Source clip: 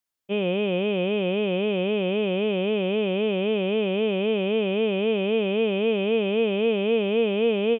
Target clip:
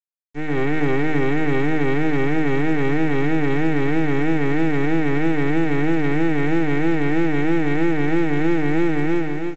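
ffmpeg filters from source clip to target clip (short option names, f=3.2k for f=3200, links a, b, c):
-af "aresample=11025,aeval=exprs='max(val(0),0)':c=same,aresample=44100,equalizer=f=150:w=5.8:g=-7,bandreject=f=920:w=6.2,bandreject=f=208.2:t=h:w=4,bandreject=f=416.4:t=h:w=4,bandreject=f=624.6:t=h:w=4,bandreject=f=832.8:t=h:w=4,bandreject=f=1.041k:t=h:w=4,bandreject=f=1.2492k:t=h:w=4,bandreject=f=1.4574k:t=h:w=4,bandreject=f=1.6656k:t=h:w=4,bandreject=f=1.8738k:t=h:w=4,bandreject=f=2.082k:t=h:w=4,bandreject=f=2.2902k:t=h:w=4,bandreject=f=2.4984k:t=h:w=4,bandreject=f=2.7066k:t=h:w=4,bandreject=f=2.9148k:t=h:w=4,bandreject=f=3.123k:t=h:w=4,asetrate=32667,aresample=44100,dynaudnorm=f=170:g=7:m=14.5dB,aecho=1:1:193:0.178,atempo=1.1,acrusher=bits=8:mix=0:aa=0.000001,acompressor=threshold=-14dB:ratio=3" -ar 16000 -c:a pcm_mulaw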